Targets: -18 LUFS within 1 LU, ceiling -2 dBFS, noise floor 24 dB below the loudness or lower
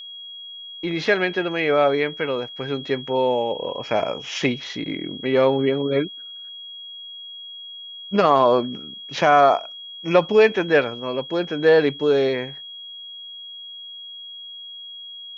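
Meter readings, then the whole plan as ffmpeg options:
steady tone 3.3 kHz; tone level -35 dBFS; loudness -20.5 LUFS; peak level -3.0 dBFS; loudness target -18.0 LUFS
-> -af "bandreject=f=3300:w=30"
-af "volume=1.33,alimiter=limit=0.794:level=0:latency=1"

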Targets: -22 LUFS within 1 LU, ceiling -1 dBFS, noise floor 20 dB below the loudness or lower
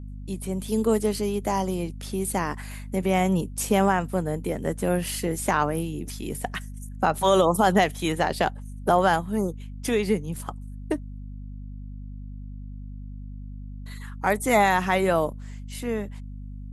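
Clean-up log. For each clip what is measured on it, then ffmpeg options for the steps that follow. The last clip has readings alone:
hum 50 Hz; highest harmonic 250 Hz; hum level -35 dBFS; loudness -25.0 LUFS; peak level -6.0 dBFS; loudness target -22.0 LUFS
-> -af "bandreject=f=50:t=h:w=6,bandreject=f=100:t=h:w=6,bandreject=f=150:t=h:w=6,bandreject=f=200:t=h:w=6,bandreject=f=250:t=h:w=6"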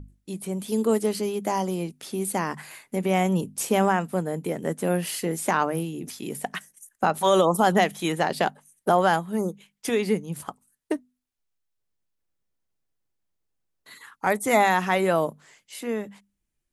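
hum not found; loudness -25.0 LUFS; peak level -7.0 dBFS; loudness target -22.0 LUFS
-> -af "volume=1.41"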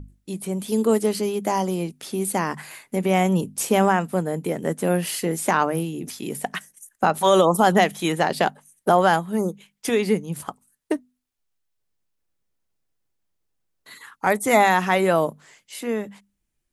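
loudness -22.0 LUFS; peak level -4.0 dBFS; noise floor -76 dBFS

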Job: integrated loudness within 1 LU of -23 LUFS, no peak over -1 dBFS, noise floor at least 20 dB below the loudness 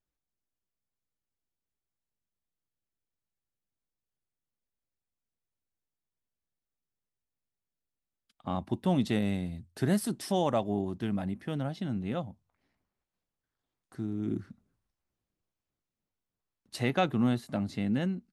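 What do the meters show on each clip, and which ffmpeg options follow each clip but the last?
loudness -31.5 LUFS; peak level -14.0 dBFS; loudness target -23.0 LUFS
-> -af "volume=2.66"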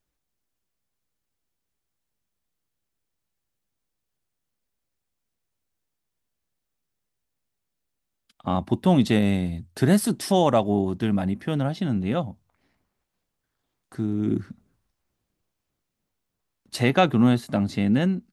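loudness -23.0 LUFS; peak level -5.5 dBFS; noise floor -81 dBFS

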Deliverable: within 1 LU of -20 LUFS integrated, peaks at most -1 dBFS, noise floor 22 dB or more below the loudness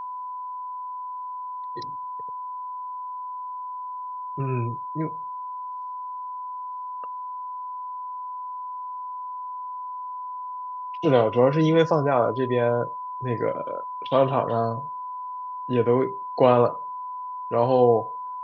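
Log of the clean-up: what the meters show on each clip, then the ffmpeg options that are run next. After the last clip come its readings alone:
steady tone 1 kHz; tone level -31 dBFS; loudness -26.5 LUFS; peak level -4.5 dBFS; loudness target -20.0 LUFS
-> -af "bandreject=f=1000:w=30"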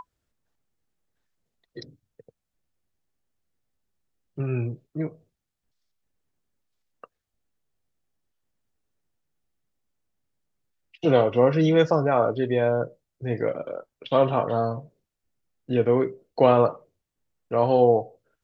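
steady tone not found; loudness -23.0 LUFS; peak level -4.5 dBFS; loudness target -20.0 LUFS
-> -af "volume=1.41"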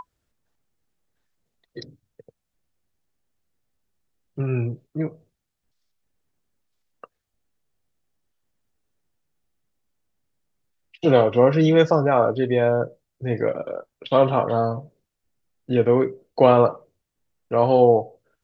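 loudness -20.0 LUFS; peak level -1.5 dBFS; noise floor -80 dBFS

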